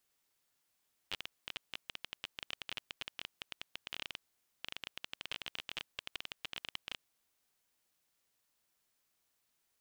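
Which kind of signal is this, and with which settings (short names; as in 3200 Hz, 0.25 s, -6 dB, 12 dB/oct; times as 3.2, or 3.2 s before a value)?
random clicks 17/s -22.5 dBFS 5.93 s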